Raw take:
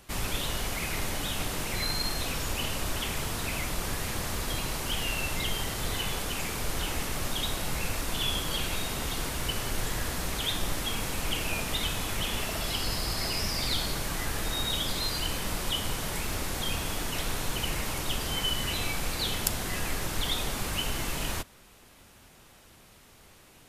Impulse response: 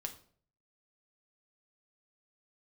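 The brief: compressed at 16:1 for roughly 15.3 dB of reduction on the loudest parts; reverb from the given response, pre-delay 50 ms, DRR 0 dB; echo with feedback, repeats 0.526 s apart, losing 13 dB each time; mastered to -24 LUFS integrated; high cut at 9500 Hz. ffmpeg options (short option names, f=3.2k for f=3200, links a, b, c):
-filter_complex "[0:a]lowpass=9.5k,acompressor=threshold=-40dB:ratio=16,aecho=1:1:526|1052|1578:0.224|0.0493|0.0108,asplit=2[a][b];[1:a]atrim=start_sample=2205,adelay=50[c];[b][c]afir=irnorm=-1:irlink=0,volume=1.5dB[d];[a][d]amix=inputs=2:normalize=0,volume=17.5dB"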